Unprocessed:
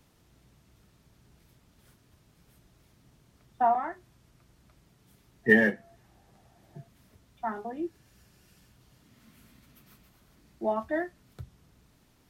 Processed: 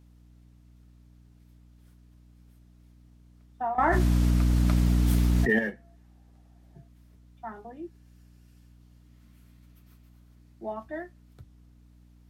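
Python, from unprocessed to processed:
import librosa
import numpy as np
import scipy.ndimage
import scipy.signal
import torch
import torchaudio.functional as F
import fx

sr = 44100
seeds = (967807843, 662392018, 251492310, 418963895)

y = fx.add_hum(x, sr, base_hz=60, snr_db=14)
y = fx.env_flatten(y, sr, amount_pct=100, at=(3.78, 5.59))
y = y * librosa.db_to_amplitude(-6.5)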